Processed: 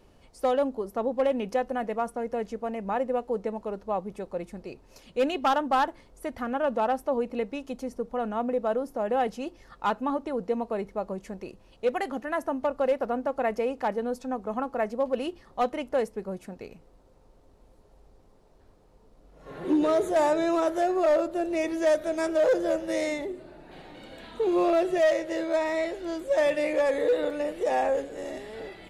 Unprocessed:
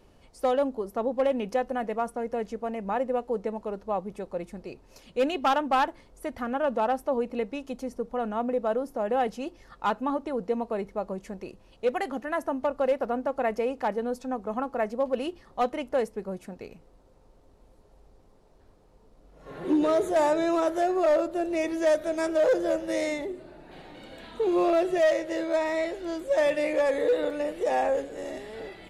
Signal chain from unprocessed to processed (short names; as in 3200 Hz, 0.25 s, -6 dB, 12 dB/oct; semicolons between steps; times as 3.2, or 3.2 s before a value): 5.47–5.89 bell 2400 Hz -7 dB 0.35 oct